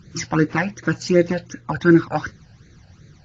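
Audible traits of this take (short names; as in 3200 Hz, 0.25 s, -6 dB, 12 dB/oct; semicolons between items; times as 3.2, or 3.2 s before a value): phasing stages 12, 2.7 Hz, lowest notch 350–1000 Hz; AAC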